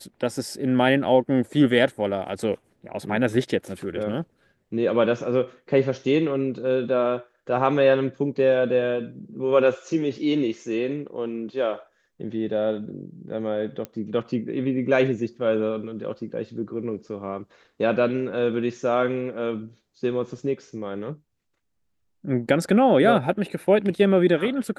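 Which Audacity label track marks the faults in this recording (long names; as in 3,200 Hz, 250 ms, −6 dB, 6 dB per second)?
13.850000	13.850000	click −18 dBFS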